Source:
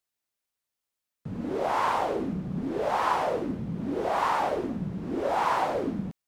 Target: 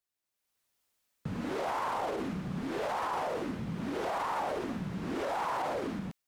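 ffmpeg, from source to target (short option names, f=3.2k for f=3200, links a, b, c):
-filter_complex "[0:a]dynaudnorm=f=190:g=5:m=12dB,alimiter=limit=-12.5dB:level=0:latency=1:release=27,acrossover=split=940|7100[a][b][c];[a]acompressor=threshold=-32dB:ratio=4[d];[b]acompressor=threshold=-34dB:ratio=4[e];[c]acompressor=threshold=-55dB:ratio=4[f];[d][e][f]amix=inputs=3:normalize=0,volume=-4dB"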